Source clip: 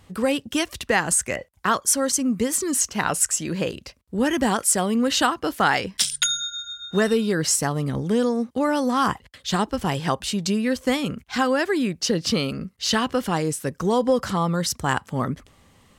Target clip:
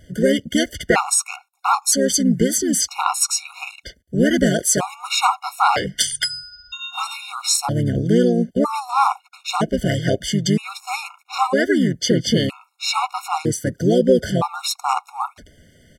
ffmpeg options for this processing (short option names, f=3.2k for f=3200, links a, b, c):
-filter_complex "[0:a]asplit=2[a][b];[b]asetrate=33038,aresample=44100,atempo=1.33484,volume=-3dB[c];[a][c]amix=inputs=2:normalize=0,afftfilt=real='re*gt(sin(2*PI*0.52*pts/sr)*(1-2*mod(floor(b*sr/1024/720),2)),0)':imag='im*gt(sin(2*PI*0.52*pts/sr)*(1-2*mod(floor(b*sr/1024/720),2)),0)':win_size=1024:overlap=0.75,volume=4dB"